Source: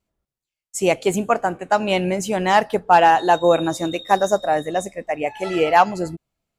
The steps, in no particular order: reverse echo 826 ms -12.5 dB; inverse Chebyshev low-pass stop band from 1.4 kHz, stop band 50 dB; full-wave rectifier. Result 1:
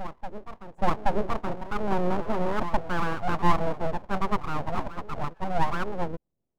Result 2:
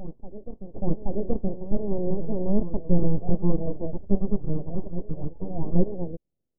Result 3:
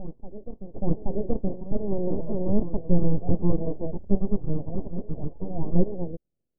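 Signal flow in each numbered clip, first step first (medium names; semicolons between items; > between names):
inverse Chebyshev low-pass > reverse echo > full-wave rectifier; full-wave rectifier > inverse Chebyshev low-pass > reverse echo; reverse echo > full-wave rectifier > inverse Chebyshev low-pass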